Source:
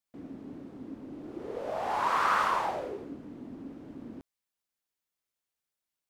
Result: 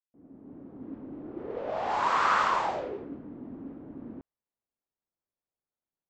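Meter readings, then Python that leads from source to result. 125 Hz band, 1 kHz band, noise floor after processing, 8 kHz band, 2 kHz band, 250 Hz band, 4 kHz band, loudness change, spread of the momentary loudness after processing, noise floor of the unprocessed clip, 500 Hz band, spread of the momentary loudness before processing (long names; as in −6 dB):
+1.0 dB, +1.5 dB, below −85 dBFS, +0.5 dB, +2.0 dB, +1.0 dB, +2.5 dB, +2.0 dB, 20 LU, below −85 dBFS, +1.5 dB, 20 LU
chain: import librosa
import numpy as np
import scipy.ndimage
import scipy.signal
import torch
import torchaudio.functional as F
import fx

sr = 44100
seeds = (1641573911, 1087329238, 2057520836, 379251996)

y = fx.fade_in_head(x, sr, length_s=0.9)
y = scipy.signal.sosfilt(scipy.signal.ellip(4, 1.0, 40, 7600.0, 'lowpass', fs=sr, output='sos'), y)
y = fx.env_lowpass(y, sr, base_hz=860.0, full_db=-26.5)
y = y * librosa.db_to_amplitude(2.5)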